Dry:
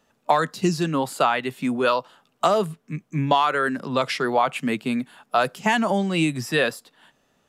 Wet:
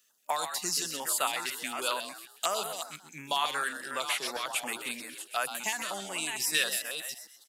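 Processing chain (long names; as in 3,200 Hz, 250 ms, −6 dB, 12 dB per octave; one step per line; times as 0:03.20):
delay that plays each chunk backwards 376 ms, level −7.5 dB
first difference
0:05.69–0:06.40: downward compressor 2 to 1, threshold −36 dBFS, peak gain reduction 5 dB
echo with shifted repeats 129 ms, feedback 32%, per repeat +80 Hz, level −9 dB
notch on a step sequencer 11 Hz 810–5,200 Hz
level +6.5 dB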